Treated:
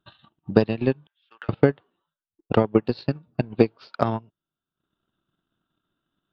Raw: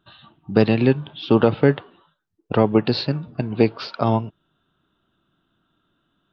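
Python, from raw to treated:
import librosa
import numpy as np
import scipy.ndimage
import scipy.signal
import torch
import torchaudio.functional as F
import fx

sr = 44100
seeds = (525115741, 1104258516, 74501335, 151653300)

y = fx.ladder_bandpass(x, sr, hz=2000.0, resonance_pct=55, at=(1.07, 1.49))
y = fx.transient(y, sr, attack_db=12, sustain_db=-11)
y = y * librosa.db_to_amplitude(-10.5)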